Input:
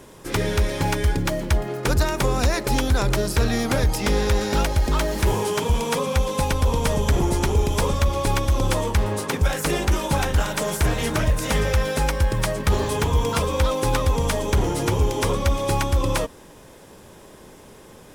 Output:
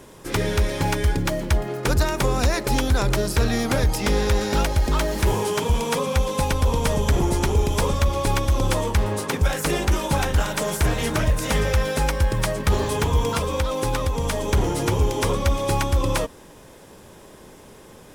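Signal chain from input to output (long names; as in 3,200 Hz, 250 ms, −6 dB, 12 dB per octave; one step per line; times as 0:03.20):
0:13.31–0:14.49: downward compressor, threshold −19 dBFS, peak gain reduction 5 dB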